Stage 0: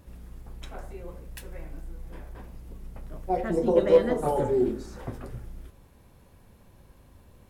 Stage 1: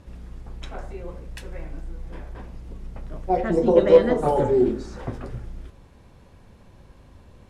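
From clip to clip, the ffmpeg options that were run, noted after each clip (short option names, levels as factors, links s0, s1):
-af "lowpass=6800,volume=1.78"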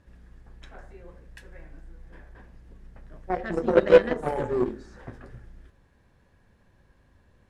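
-af "equalizer=f=1700:w=4.2:g=10.5,aeval=exprs='0.75*(cos(1*acos(clip(val(0)/0.75,-1,1)))-cos(1*PI/2))+0.106*(cos(3*acos(clip(val(0)/0.75,-1,1)))-cos(3*PI/2))+0.0335*(cos(7*acos(clip(val(0)/0.75,-1,1)))-cos(7*PI/2))':c=same"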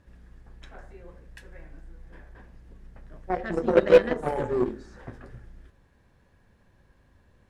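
-af "asoftclip=type=hard:threshold=0.473"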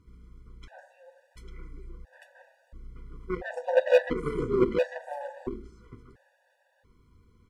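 -af "aecho=1:1:848:0.501,afftfilt=real='re*gt(sin(2*PI*0.73*pts/sr)*(1-2*mod(floor(b*sr/1024/490),2)),0)':imag='im*gt(sin(2*PI*0.73*pts/sr)*(1-2*mod(floor(b*sr/1024/490),2)),0)':win_size=1024:overlap=0.75"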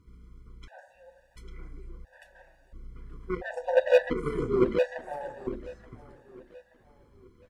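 -af "aecho=1:1:878|1756|2634:0.0944|0.0415|0.0183"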